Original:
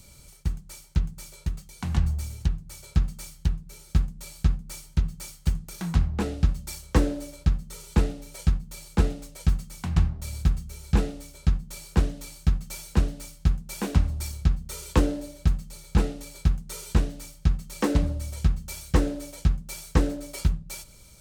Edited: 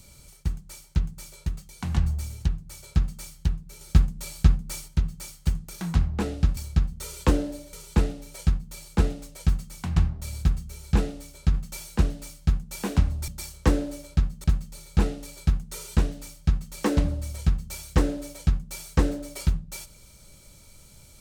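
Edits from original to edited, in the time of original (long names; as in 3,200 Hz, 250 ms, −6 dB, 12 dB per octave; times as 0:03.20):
0:03.81–0:04.88: clip gain +4.5 dB
0:06.57–0:07.73: swap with 0:14.26–0:15.42
0:11.54–0:12.52: remove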